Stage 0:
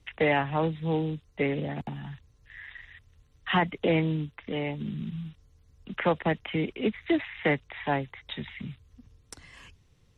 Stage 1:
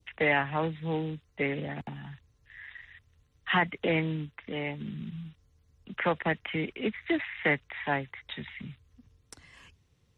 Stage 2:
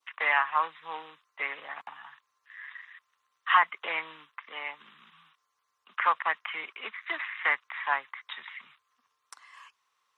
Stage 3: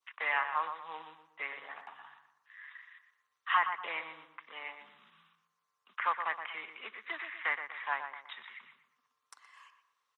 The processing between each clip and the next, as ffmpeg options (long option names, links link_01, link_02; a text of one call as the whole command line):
ffmpeg -i in.wav -af "highpass=43,adynamicequalizer=threshold=0.00631:dfrequency=1800:dqfactor=1:tfrequency=1800:tqfactor=1:attack=5:release=100:ratio=0.375:range=3.5:mode=boostabove:tftype=bell,volume=-4dB" out.wav
ffmpeg -i in.wav -af "highpass=frequency=1100:width_type=q:width=5.1,volume=-1.5dB" out.wav
ffmpeg -i in.wav -filter_complex "[0:a]asplit=2[link_01][link_02];[link_02]adelay=120,lowpass=frequency=1800:poles=1,volume=-7dB,asplit=2[link_03][link_04];[link_04]adelay=120,lowpass=frequency=1800:poles=1,volume=0.41,asplit=2[link_05][link_06];[link_06]adelay=120,lowpass=frequency=1800:poles=1,volume=0.41,asplit=2[link_07][link_08];[link_08]adelay=120,lowpass=frequency=1800:poles=1,volume=0.41,asplit=2[link_09][link_10];[link_10]adelay=120,lowpass=frequency=1800:poles=1,volume=0.41[link_11];[link_01][link_03][link_05][link_07][link_09][link_11]amix=inputs=6:normalize=0,volume=-6.5dB" out.wav